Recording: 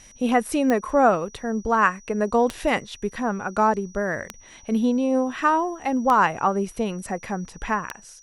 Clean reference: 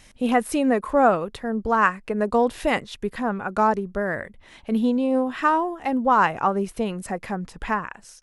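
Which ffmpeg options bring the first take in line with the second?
-af "adeclick=t=4,bandreject=f=5.8k:w=30"

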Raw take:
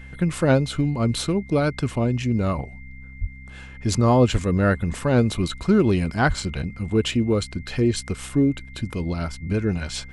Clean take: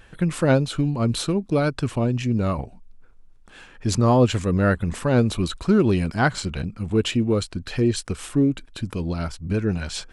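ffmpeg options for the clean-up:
-filter_complex "[0:a]bandreject=f=65.4:t=h:w=4,bandreject=f=130.8:t=h:w=4,bandreject=f=196.2:t=h:w=4,bandreject=f=261.6:t=h:w=4,bandreject=f=2.1k:w=30,asplit=3[a][b][c];[a]afade=t=out:st=3.2:d=0.02[d];[b]highpass=f=140:w=0.5412,highpass=f=140:w=1.3066,afade=t=in:st=3.2:d=0.02,afade=t=out:st=3.32:d=0.02[e];[c]afade=t=in:st=3.32:d=0.02[f];[d][e][f]amix=inputs=3:normalize=0,asplit=3[g][h][i];[g]afade=t=out:st=4.32:d=0.02[j];[h]highpass=f=140:w=0.5412,highpass=f=140:w=1.3066,afade=t=in:st=4.32:d=0.02,afade=t=out:st=4.44:d=0.02[k];[i]afade=t=in:st=4.44:d=0.02[l];[j][k][l]amix=inputs=3:normalize=0,asplit=3[m][n][o];[m]afade=t=out:st=6.27:d=0.02[p];[n]highpass=f=140:w=0.5412,highpass=f=140:w=1.3066,afade=t=in:st=6.27:d=0.02,afade=t=out:st=6.39:d=0.02[q];[o]afade=t=in:st=6.39:d=0.02[r];[p][q][r]amix=inputs=3:normalize=0"

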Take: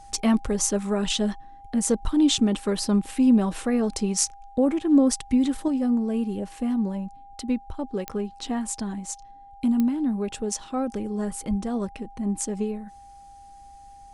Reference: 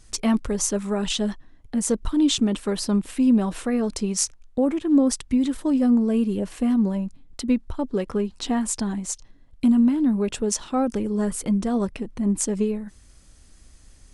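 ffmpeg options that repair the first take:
-filter_complex "[0:a]adeclick=t=4,bandreject=f=800:w=30,asplit=3[a][b][c];[a]afade=t=out:st=11.49:d=0.02[d];[b]highpass=f=140:w=0.5412,highpass=f=140:w=1.3066,afade=t=in:st=11.49:d=0.02,afade=t=out:st=11.61:d=0.02[e];[c]afade=t=in:st=11.61:d=0.02[f];[d][e][f]amix=inputs=3:normalize=0,asetnsamples=n=441:p=0,asendcmd='5.68 volume volume 4.5dB',volume=0dB"

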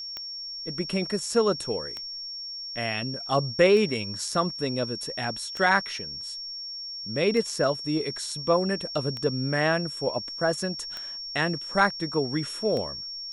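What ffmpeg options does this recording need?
-af "adeclick=t=4,bandreject=f=5.5k:w=30"

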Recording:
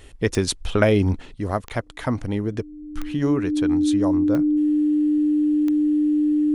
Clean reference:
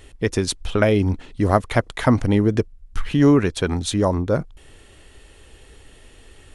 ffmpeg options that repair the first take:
-af "adeclick=t=4,bandreject=f=300:w=30,asetnsamples=n=441:p=0,asendcmd='1.34 volume volume 7.5dB',volume=0dB"

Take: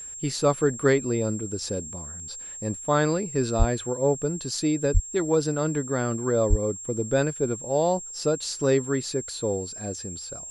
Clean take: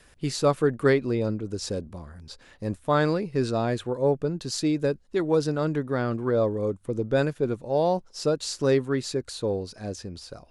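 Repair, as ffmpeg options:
-filter_complex "[0:a]bandreject=f=7.5k:w=30,asplit=3[a][b][c];[a]afade=t=out:st=3.58:d=0.02[d];[b]highpass=f=140:w=0.5412,highpass=f=140:w=1.3066,afade=t=in:st=3.58:d=0.02,afade=t=out:st=3.7:d=0.02[e];[c]afade=t=in:st=3.7:d=0.02[f];[d][e][f]amix=inputs=3:normalize=0,asplit=3[g][h][i];[g]afade=t=out:st=4.93:d=0.02[j];[h]highpass=f=140:w=0.5412,highpass=f=140:w=1.3066,afade=t=in:st=4.93:d=0.02,afade=t=out:st=5.05:d=0.02[k];[i]afade=t=in:st=5.05:d=0.02[l];[j][k][l]amix=inputs=3:normalize=0,asplit=3[m][n][o];[m]afade=t=out:st=6.49:d=0.02[p];[n]highpass=f=140:w=0.5412,highpass=f=140:w=1.3066,afade=t=in:st=6.49:d=0.02,afade=t=out:st=6.61:d=0.02[q];[o]afade=t=in:st=6.61:d=0.02[r];[p][q][r]amix=inputs=3:normalize=0"

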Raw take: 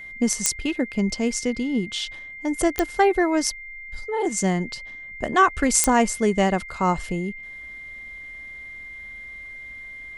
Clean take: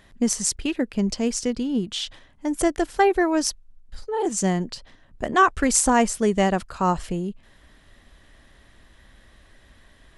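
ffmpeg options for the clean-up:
-af "adeclick=t=4,bandreject=f=2.1k:w=30"

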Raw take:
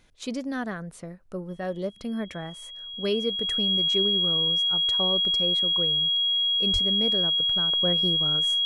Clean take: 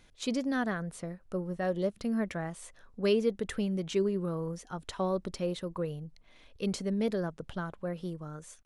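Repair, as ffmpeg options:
-filter_complex "[0:a]bandreject=f=3.3k:w=30,asplit=3[a][b][c];[a]afade=t=out:st=6.72:d=0.02[d];[b]highpass=f=140:w=0.5412,highpass=f=140:w=1.3066,afade=t=in:st=6.72:d=0.02,afade=t=out:st=6.84:d=0.02[e];[c]afade=t=in:st=6.84:d=0.02[f];[d][e][f]amix=inputs=3:normalize=0,asetnsamples=n=441:p=0,asendcmd='7.73 volume volume -7.5dB',volume=0dB"

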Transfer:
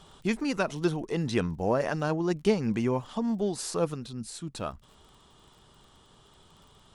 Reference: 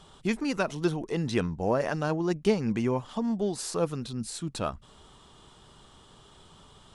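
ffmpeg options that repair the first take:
-af "adeclick=t=4,asetnsamples=n=441:p=0,asendcmd='3.94 volume volume 3.5dB',volume=0dB"

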